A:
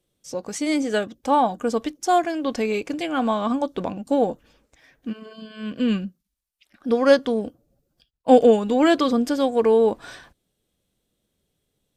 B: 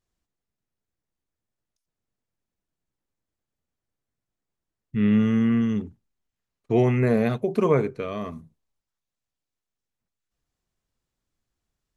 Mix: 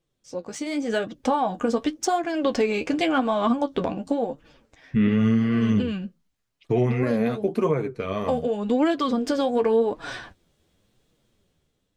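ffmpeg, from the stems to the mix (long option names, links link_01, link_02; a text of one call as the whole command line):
ffmpeg -i stem1.wav -i stem2.wav -filter_complex "[0:a]adynamicsmooth=sensitivity=2.5:basefreq=6600,acompressor=threshold=-24dB:ratio=10,volume=-0.5dB[link_01];[1:a]volume=2dB[link_02];[link_01][link_02]amix=inputs=2:normalize=0,dynaudnorm=framelen=260:gausssize=7:maxgain=12dB,flanger=delay=5.8:depth=7.8:regen=38:speed=0.9:shape=triangular,alimiter=limit=-12.5dB:level=0:latency=1:release=444" out.wav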